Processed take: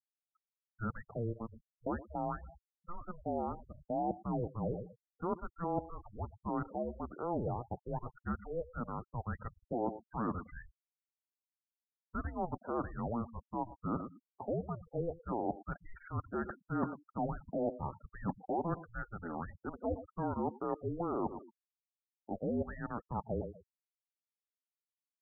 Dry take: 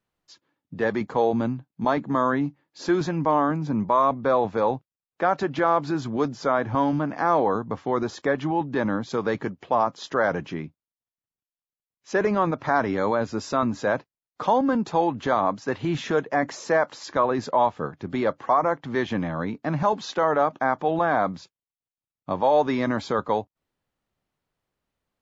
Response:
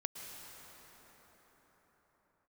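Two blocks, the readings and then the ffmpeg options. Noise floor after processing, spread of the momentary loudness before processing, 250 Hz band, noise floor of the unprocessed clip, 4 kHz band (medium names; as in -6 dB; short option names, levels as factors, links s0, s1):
under -85 dBFS, 7 LU, -13.0 dB, under -85 dBFS, under -40 dB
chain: -af "aecho=1:1:120|240:0.0794|0.0207,areverse,acompressor=threshold=0.0178:ratio=6,areverse,highpass=f=450:t=q:w=0.5412,highpass=f=450:t=q:w=1.307,lowpass=f=2200:t=q:w=0.5176,lowpass=f=2200:t=q:w=0.7071,lowpass=f=2200:t=q:w=1.932,afreqshift=-350,afftfilt=real='re*gte(hypot(re,im),0.00708)':imag='im*gte(hypot(re,im),0.00708)':win_size=1024:overlap=0.75,volume=1.33"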